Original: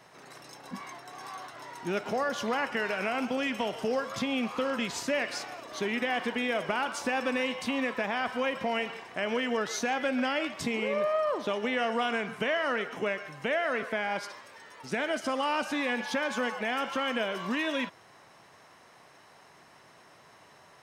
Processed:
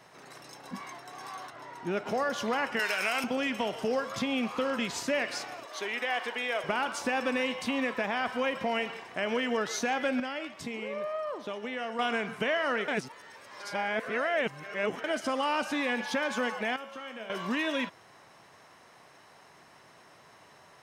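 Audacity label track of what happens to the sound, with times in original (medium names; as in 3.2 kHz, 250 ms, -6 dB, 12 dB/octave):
1.500000	2.070000	treble shelf 3.3 kHz -8.5 dB
2.790000	3.240000	tilt EQ +4 dB/octave
5.650000	6.640000	high-pass 510 Hz
10.200000	11.990000	gain -6.5 dB
12.880000	15.040000	reverse
16.760000	17.300000	feedback comb 110 Hz, decay 1.1 s, mix 80%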